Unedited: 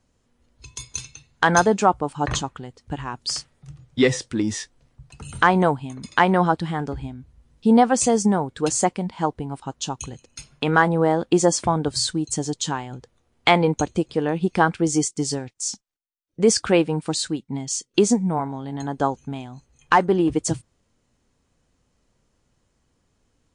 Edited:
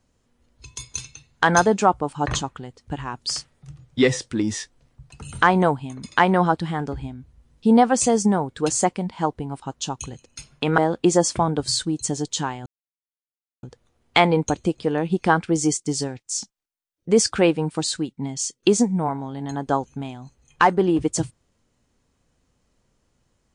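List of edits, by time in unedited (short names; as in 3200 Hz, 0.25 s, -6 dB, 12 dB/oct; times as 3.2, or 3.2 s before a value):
10.78–11.06 cut
12.94 insert silence 0.97 s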